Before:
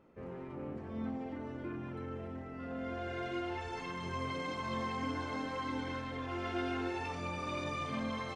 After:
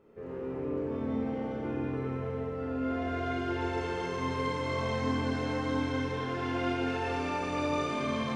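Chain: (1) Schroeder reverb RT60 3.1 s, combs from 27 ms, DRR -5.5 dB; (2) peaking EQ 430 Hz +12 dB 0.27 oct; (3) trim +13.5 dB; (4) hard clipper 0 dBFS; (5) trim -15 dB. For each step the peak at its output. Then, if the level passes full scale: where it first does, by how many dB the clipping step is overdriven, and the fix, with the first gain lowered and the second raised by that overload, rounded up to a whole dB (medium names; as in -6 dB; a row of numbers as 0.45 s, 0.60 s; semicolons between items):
-17.5 dBFS, -16.5 dBFS, -3.0 dBFS, -3.0 dBFS, -18.0 dBFS; nothing clips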